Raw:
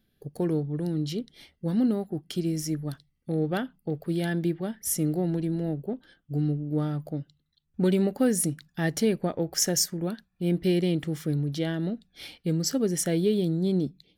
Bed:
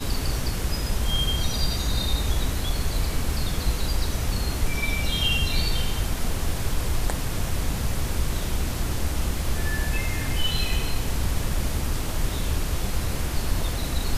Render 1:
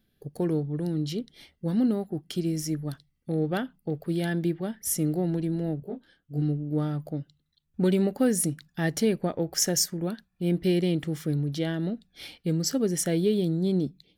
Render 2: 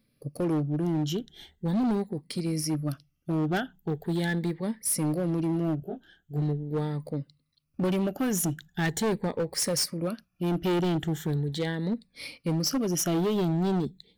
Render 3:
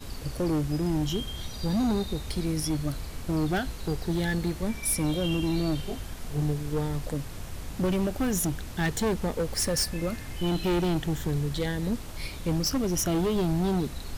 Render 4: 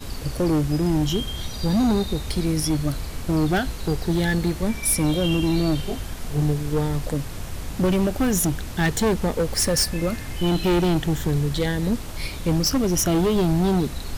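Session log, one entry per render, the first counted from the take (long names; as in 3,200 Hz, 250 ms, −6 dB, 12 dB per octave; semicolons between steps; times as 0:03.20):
0:05.80–0:06.42: micro pitch shift up and down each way 59 cents
rippled gain that drifts along the octave scale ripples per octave 0.95, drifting +0.41 Hz, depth 12 dB; hard clipping −23 dBFS, distortion −10 dB
mix in bed −12 dB
level +6 dB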